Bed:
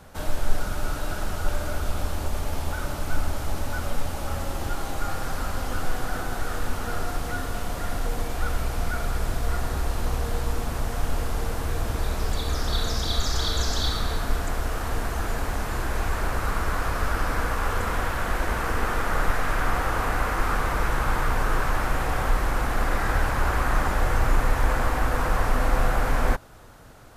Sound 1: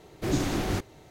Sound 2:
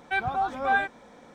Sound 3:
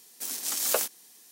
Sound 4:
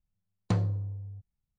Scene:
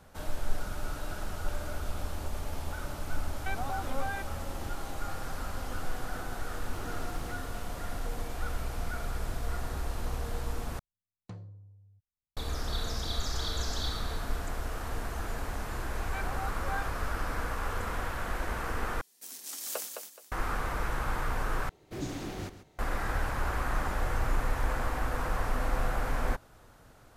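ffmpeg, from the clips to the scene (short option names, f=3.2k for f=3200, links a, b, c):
-filter_complex "[2:a]asplit=2[a][b];[1:a]asplit=2[c][d];[0:a]volume=-8dB[e];[a]acompressor=threshold=-29dB:ratio=6:attack=3.2:release=140:knee=1:detection=peak[f];[c]acompressor=threshold=-36dB:ratio=6:attack=3.2:release=140:knee=1:detection=peak[g];[3:a]aecho=1:1:212|424|636:0.501|0.13|0.0339[h];[d]aecho=1:1:136:0.237[i];[e]asplit=4[j][k][l][m];[j]atrim=end=10.794[n];[4:a]atrim=end=1.58,asetpts=PTS-STARTPTS,volume=-17.5dB[o];[k]atrim=start=12.366:end=19.014[p];[h]atrim=end=1.31,asetpts=PTS-STARTPTS,volume=-10.5dB[q];[l]atrim=start=20.316:end=21.694[r];[i]atrim=end=1.1,asetpts=PTS-STARTPTS,volume=-10dB[s];[m]atrim=start=22.786[t];[f]atrim=end=1.34,asetpts=PTS-STARTPTS,volume=-4dB,afade=t=in:d=0.004:c=hsin,afade=t=out:st=1.336:d=0.004:c=hsin,adelay=3350[u];[g]atrim=end=1.1,asetpts=PTS-STARTPTS,volume=-7.5dB,afade=t=in:d=0.004:c=hsin,afade=t=out:st=1.096:d=0.004:c=hsin,adelay=6520[v];[b]atrim=end=1.34,asetpts=PTS-STARTPTS,volume=-14dB,afade=t=in:d=0.004:c=hsin,afade=t=out:st=1.336:d=0.004:c=hsin,adelay=16020[w];[n][o]acrossfade=d=0.004:c1=hsin:c2=hsin[x];[x][p]acrossfade=d=0.004:c1=hsin:c2=hsin[y];[y][q]acrossfade=d=0.004:c1=hsin:c2=hsin[z];[z][r]acrossfade=d=0.004:c1=hsin:c2=hsin[aa];[aa][s]acrossfade=d=0.004:c1=hsin:c2=hsin[ab];[ab][t]acrossfade=d=0.004:c1=hsin:c2=hsin[ac];[ac][u][v][w]amix=inputs=4:normalize=0"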